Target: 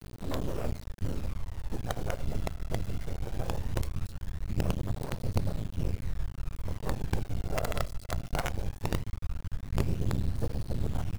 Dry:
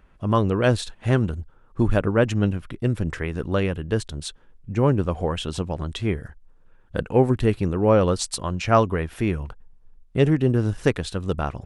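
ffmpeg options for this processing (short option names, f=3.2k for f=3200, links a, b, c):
-filter_complex "[0:a]aeval=exprs='val(0)+0.5*0.0422*sgn(val(0))':c=same,adynamicequalizer=threshold=0.0224:dfrequency=480:dqfactor=1.1:tfrequency=480:tqfactor=1.1:attack=5:release=100:ratio=0.375:range=2:mode=boostabove:tftype=bell,afftfilt=real='hypot(re,im)*cos(2*PI*random(0))':imag='hypot(re,im)*sin(2*PI*random(1))':win_size=512:overlap=0.75,asubboost=boost=8.5:cutoff=93,afwtdn=0.0355,acrossover=split=88|1400[a][b][c];[a]acompressor=threshold=-28dB:ratio=4[d];[b]acompressor=threshold=-25dB:ratio=4[e];[c]acompressor=threshold=-54dB:ratio=4[f];[d][e][f]amix=inputs=3:normalize=0,asoftclip=type=tanh:threshold=-15dB,asplit=2[g][h];[h]adelay=74,lowpass=f=1.2k:p=1,volume=-12dB,asplit=2[i][j];[j]adelay=74,lowpass=f=1.2k:p=1,volume=0.34,asplit=2[k][l];[l]adelay=74,lowpass=f=1.2k:p=1,volume=0.34[m];[i][k][m]amix=inputs=3:normalize=0[n];[g][n]amix=inputs=2:normalize=0,acrusher=bits=4:dc=4:mix=0:aa=0.000001,asetrate=45938,aresample=44100,flanger=delay=0.2:depth=1.3:regen=57:speed=0.19:shape=sinusoidal"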